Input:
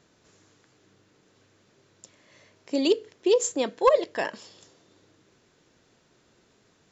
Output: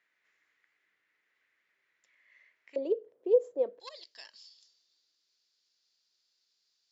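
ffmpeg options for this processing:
ffmpeg -i in.wav -af "asetnsamples=nb_out_samples=441:pad=0,asendcmd='2.76 bandpass f 510;3.8 bandpass f 4700',bandpass=frequency=2000:width_type=q:width=5.4:csg=0" out.wav

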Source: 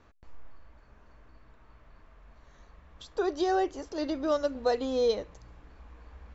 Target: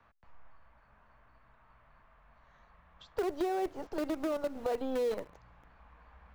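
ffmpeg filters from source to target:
ffmpeg -i in.wav -filter_complex "[0:a]acrossover=split=170 3800:gain=0.178 1 0.2[link_01][link_02][link_03];[link_01][link_02][link_03]amix=inputs=3:normalize=0,acrossover=split=180|650[link_04][link_05][link_06];[link_05]acrusher=bits=6:dc=4:mix=0:aa=0.000001[link_07];[link_04][link_07][link_06]amix=inputs=3:normalize=0,alimiter=limit=-22.5dB:level=0:latency=1:release=26,acompressor=threshold=-35dB:ratio=2.5,tiltshelf=frequency=1300:gain=4.5" out.wav

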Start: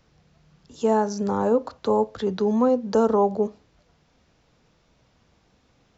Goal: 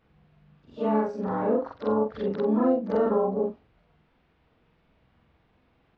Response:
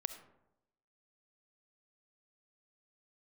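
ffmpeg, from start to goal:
-filter_complex "[0:a]afftfilt=real='re':imag='-im':win_size=4096:overlap=0.75,lowpass=frequency=3100:width=0.5412,lowpass=frequency=3100:width=1.3066,bandreject=frequency=560:width=12,adynamicequalizer=threshold=0.00708:dfrequency=2400:dqfactor=0.76:tfrequency=2400:tqfactor=0.76:attack=5:release=100:ratio=0.375:range=2:mode=cutabove:tftype=bell,asplit=2[link_01][link_02];[link_02]asetrate=58866,aresample=44100,atempo=0.749154,volume=-10dB[link_03];[link_01][link_03]amix=inputs=2:normalize=0,acrossover=split=260|540|1300[link_04][link_05][link_06][link_07];[link_06]alimiter=level_in=3.5dB:limit=-24dB:level=0:latency=1,volume=-3.5dB[link_08];[link_04][link_05][link_08][link_07]amix=inputs=4:normalize=0,volume=1.5dB"

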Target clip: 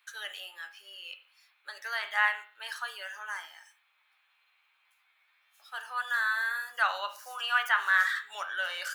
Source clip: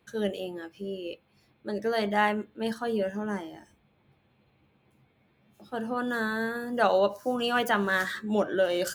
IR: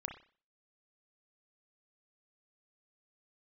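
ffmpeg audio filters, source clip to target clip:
-filter_complex "[0:a]asplit=2[link_01][link_02];[1:a]atrim=start_sample=2205[link_03];[link_02][link_03]afir=irnorm=-1:irlink=0,volume=0dB[link_04];[link_01][link_04]amix=inputs=2:normalize=0,acrossover=split=2500[link_05][link_06];[link_06]acompressor=threshold=-40dB:ratio=4:attack=1:release=60[link_07];[link_05][link_07]amix=inputs=2:normalize=0,highpass=frequency=1200:width=0.5412,highpass=frequency=1200:width=1.3066"

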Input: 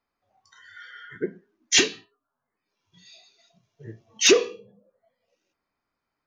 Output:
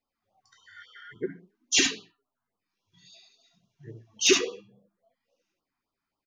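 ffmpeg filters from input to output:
ffmpeg -i in.wav -af "aecho=1:1:70:0.596,flanger=delay=3.6:depth=7.2:regen=56:speed=0.57:shape=sinusoidal,afftfilt=real='re*(1-between(b*sr/1024,450*pow(2000/450,0.5+0.5*sin(2*PI*3.6*pts/sr))/1.41,450*pow(2000/450,0.5+0.5*sin(2*PI*3.6*pts/sr))*1.41))':imag='im*(1-between(b*sr/1024,450*pow(2000/450,0.5+0.5*sin(2*PI*3.6*pts/sr))/1.41,450*pow(2000/450,0.5+0.5*sin(2*PI*3.6*pts/sr))*1.41))':win_size=1024:overlap=0.75" out.wav

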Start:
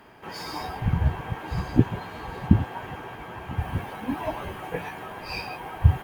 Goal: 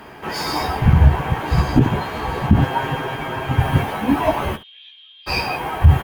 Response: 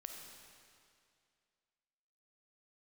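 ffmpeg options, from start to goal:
-filter_complex "[0:a]asettb=1/sr,asplit=3[link_01][link_02][link_03];[link_01]atrim=end=2.614[link_04];[link_02]atrim=start=2.61:end=3.83,asetpts=PTS-STARTPTS,afade=type=in:duration=0.004:curve=qsin,afade=type=out:start_time=1.216:duration=0.004:curve=qsin,aecho=1:1:7.5:0.65,atrim=end_sample=53802[link_05];[link_03]atrim=start=3.826[link_06];[link_04][link_05]acrossfade=duration=0.004:curve1=hsin:curve2=qsin[link_07];[link_07][link_06]acrossfade=duration=0.004:curve1=qsin:curve2=hsin,asplit=3[link_08][link_09][link_10];[link_08]afade=type=out:start_time=4.55:duration=0.02[link_11];[link_09]asuperpass=centerf=3400:order=4:qfactor=5.2,afade=type=in:start_time=4.55:duration=0.02,afade=type=out:start_time=5.26:duration=0.02[link_12];[link_10]afade=type=in:start_time=5.26:duration=0.02[link_13];[link_11][link_12][link_13]amix=inputs=3:normalize=0,aecho=1:1:14|68:0.422|0.15,alimiter=level_in=12dB:limit=-1dB:release=50:level=0:latency=1,volume=-1dB"

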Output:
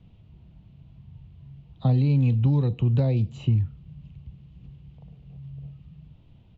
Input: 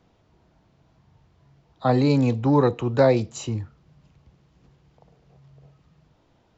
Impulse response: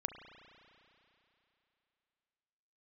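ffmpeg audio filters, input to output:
-filter_complex "[0:a]bass=frequency=250:gain=10,treble=frequency=4000:gain=-3,acrossover=split=990|2500[link_01][link_02][link_03];[link_01]acompressor=threshold=-21dB:ratio=4[link_04];[link_02]acompressor=threshold=-49dB:ratio=4[link_05];[link_03]acompressor=threshold=-49dB:ratio=4[link_06];[link_04][link_05][link_06]amix=inputs=3:normalize=0,firequalizer=gain_entry='entry(160,0);entry(300,-8);entry(1600,-13);entry(2800,2);entry(5400,-14)':delay=0.05:min_phase=1,volume=3.5dB"

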